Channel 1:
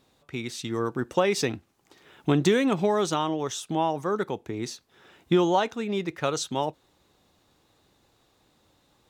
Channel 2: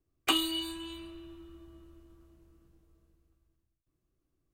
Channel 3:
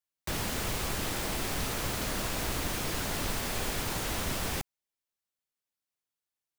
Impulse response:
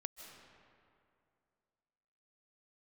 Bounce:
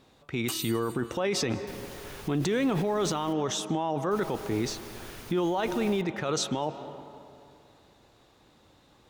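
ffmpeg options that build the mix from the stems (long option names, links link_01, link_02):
-filter_complex "[0:a]highshelf=frequency=6300:gain=-8,volume=3dB,asplit=2[link_01][link_02];[link_02]volume=-6.5dB[link_03];[1:a]aexciter=amount=4.8:drive=5.2:freq=4900,adelay=200,volume=-12dB[link_04];[2:a]bandreject=frequency=7700:width=12,adelay=1400,volume=-12dB,asplit=3[link_05][link_06][link_07];[link_05]atrim=end=3.33,asetpts=PTS-STARTPTS,afade=type=out:start_time=3.326:duration=0.004:curve=hsin[link_08];[link_06]atrim=start=3.33:end=4.11,asetpts=PTS-STARTPTS,volume=0[link_09];[link_07]atrim=start=4.11,asetpts=PTS-STARTPTS,afade=type=in:duration=0.004:curve=hsin[link_10];[link_08][link_09][link_10]concat=n=3:v=0:a=1[link_11];[3:a]atrim=start_sample=2205[link_12];[link_03][link_12]afir=irnorm=-1:irlink=0[link_13];[link_01][link_04][link_11][link_13]amix=inputs=4:normalize=0,alimiter=limit=-19.5dB:level=0:latency=1:release=23"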